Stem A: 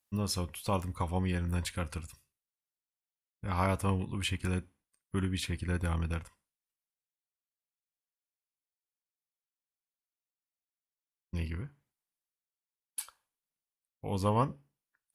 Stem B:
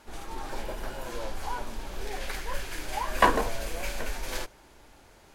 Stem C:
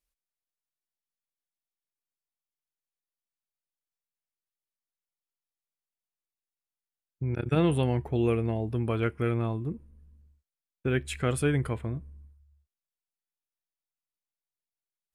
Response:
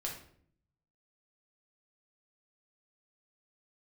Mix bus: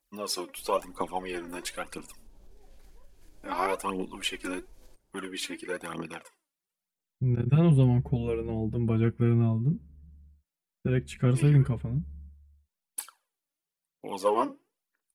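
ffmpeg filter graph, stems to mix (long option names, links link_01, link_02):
-filter_complex "[0:a]aphaser=in_gain=1:out_gain=1:delay=3.7:decay=0.65:speed=1:type=triangular,highpass=frequency=290:width=0.5412,highpass=frequency=290:width=1.3066,volume=0.5dB[link_01];[1:a]equalizer=frequency=1800:width_type=o:width=2.3:gain=-10.5,acompressor=threshold=-35dB:ratio=6,adelay=500,volume=-19dB[link_02];[2:a]equalizer=frequency=180:width=2.7:gain=13,bandreject=frequency=1100:width=16,asplit=2[link_03][link_04];[link_04]adelay=5.4,afreqshift=0.53[link_05];[link_03][link_05]amix=inputs=2:normalize=1,volume=-2.5dB[link_06];[link_01][link_02][link_06]amix=inputs=3:normalize=0,lowshelf=frequency=330:gain=7"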